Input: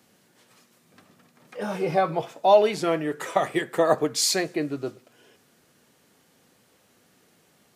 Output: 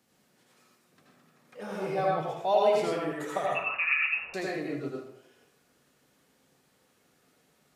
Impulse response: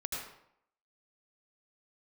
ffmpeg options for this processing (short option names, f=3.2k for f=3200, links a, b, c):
-filter_complex "[0:a]asettb=1/sr,asplit=3[a][b][c];[a]atrim=end=3.464[d];[b]atrim=start=3.46:end=4.34,asetpts=PTS-STARTPTS,afade=t=in:d=0.004:c=qsin,afade=t=out:st=0.876:d=0.004:c=qsin,lowpass=f=2.6k:t=q:w=0.5098,lowpass=f=2.6k:t=q:w=0.6013,lowpass=f=2.6k:t=q:w=0.9,lowpass=f=2.6k:t=q:w=2.563,afreqshift=-3000[e];[c]atrim=start=4.336[f];[d][e]acrossfade=d=0.004:c1=hsin:c2=qsin[g];[g][f]acrossfade=d=0.004:c1=qsin:c2=hsin[h];[1:a]atrim=start_sample=2205[i];[h][i]afir=irnorm=-1:irlink=0,volume=-7.5dB"